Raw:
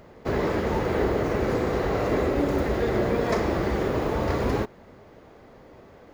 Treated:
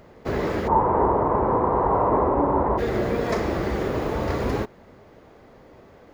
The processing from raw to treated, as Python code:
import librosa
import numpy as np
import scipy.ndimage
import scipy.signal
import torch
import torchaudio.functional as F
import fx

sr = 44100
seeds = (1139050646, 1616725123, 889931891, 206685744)

y = fx.lowpass_res(x, sr, hz=970.0, q=7.9, at=(0.67, 2.77), fade=0.02)